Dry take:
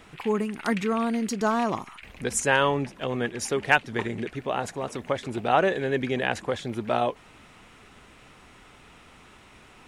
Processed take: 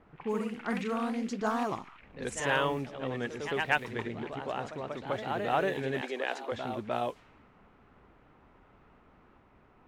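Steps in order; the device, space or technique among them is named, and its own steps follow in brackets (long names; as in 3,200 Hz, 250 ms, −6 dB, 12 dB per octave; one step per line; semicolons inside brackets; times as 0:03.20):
cassette deck with a dynamic noise filter (white noise bed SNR 27 dB; low-pass that shuts in the quiet parts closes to 1,100 Hz, open at −19.5 dBFS)
delay with pitch and tempo change per echo 83 ms, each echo +1 semitone, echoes 2, each echo −6 dB
0:06.01–0:06.52: high-pass filter 310 Hz 24 dB per octave
level −7.5 dB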